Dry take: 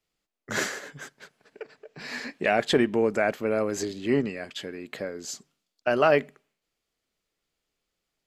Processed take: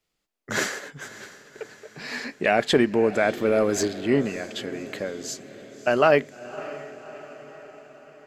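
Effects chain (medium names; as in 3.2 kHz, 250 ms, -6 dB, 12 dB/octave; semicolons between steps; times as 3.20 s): 3.37–3.88 s: waveshaping leveller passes 1; echo that smears into a reverb 593 ms, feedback 56%, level -16 dB; trim +2.5 dB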